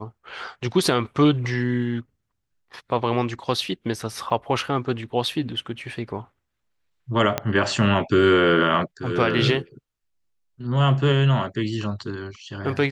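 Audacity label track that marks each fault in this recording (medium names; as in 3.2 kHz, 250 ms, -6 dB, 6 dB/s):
4.300000	4.300000	dropout 4.8 ms
7.380000	7.380000	pop -7 dBFS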